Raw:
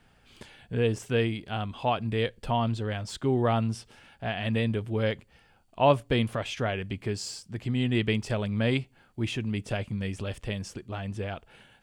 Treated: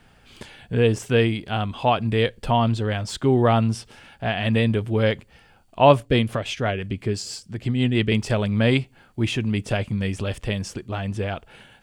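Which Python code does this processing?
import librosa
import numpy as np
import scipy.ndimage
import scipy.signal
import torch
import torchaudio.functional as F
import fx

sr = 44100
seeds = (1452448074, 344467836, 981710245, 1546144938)

y = fx.rotary(x, sr, hz=6.0, at=(6.05, 8.12))
y = y * 10.0 ** (7.0 / 20.0)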